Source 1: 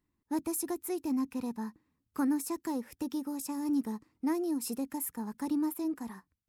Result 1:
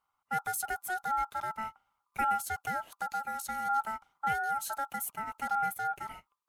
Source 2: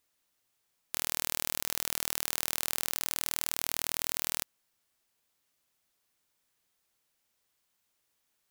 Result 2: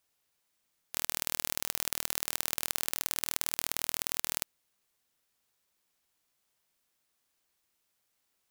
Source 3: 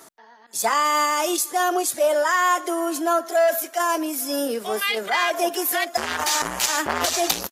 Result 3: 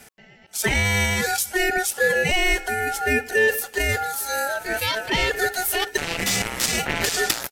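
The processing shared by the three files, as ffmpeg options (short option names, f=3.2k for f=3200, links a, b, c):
-af "aeval=exprs='val(0)*sin(2*PI*1100*n/s)':c=same,volume=2.5dB"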